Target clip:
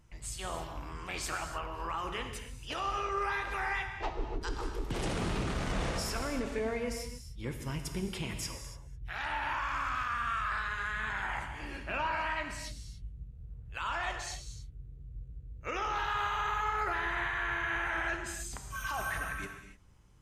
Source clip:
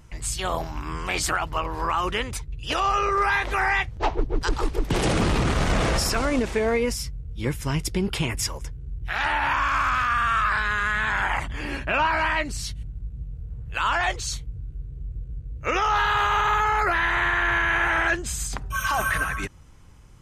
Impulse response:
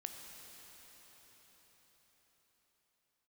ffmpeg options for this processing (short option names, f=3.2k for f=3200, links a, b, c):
-filter_complex "[1:a]atrim=start_sample=2205,afade=t=out:st=0.38:d=0.01,atrim=end_sample=17199,asetrate=48510,aresample=44100[a];[0:a][a]afir=irnorm=-1:irlink=0,volume=-7dB"